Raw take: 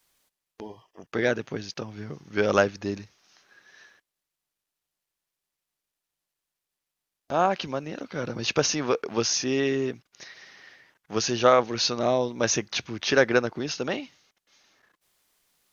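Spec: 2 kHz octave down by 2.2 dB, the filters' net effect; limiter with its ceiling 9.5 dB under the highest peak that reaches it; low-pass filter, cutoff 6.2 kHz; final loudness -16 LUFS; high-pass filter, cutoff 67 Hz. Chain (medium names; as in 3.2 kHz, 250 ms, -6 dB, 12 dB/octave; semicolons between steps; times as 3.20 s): high-pass 67 Hz; low-pass 6.2 kHz; peaking EQ 2 kHz -3 dB; trim +13 dB; peak limiter -1.5 dBFS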